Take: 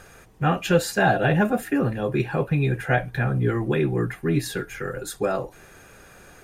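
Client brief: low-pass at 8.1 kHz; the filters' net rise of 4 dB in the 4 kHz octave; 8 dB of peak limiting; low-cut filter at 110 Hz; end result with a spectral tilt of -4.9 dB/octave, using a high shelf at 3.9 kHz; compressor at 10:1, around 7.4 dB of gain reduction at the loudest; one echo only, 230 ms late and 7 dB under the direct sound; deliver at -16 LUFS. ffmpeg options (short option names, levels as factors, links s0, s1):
-af "highpass=110,lowpass=8100,highshelf=f=3900:g=-6.5,equalizer=f=4000:t=o:g=9,acompressor=threshold=0.0891:ratio=10,alimiter=limit=0.106:level=0:latency=1,aecho=1:1:230:0.447,volume=4.47"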